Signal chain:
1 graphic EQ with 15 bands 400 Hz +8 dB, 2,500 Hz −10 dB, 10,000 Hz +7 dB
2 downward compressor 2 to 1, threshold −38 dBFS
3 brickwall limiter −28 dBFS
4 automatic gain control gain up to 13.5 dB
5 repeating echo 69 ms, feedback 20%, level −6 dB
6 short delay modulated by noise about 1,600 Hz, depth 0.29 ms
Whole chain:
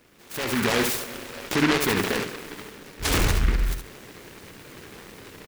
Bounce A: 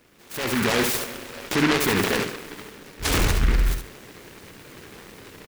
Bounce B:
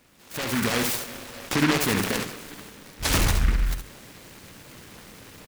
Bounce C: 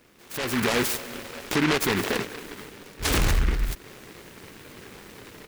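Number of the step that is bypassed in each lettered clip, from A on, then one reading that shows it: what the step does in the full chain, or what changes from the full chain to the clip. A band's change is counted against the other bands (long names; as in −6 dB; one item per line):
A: 2, average gain reduction 7.0 dB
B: 1, 500 Hz band −3.0 dB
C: 5, change in crest factor −2.5 dB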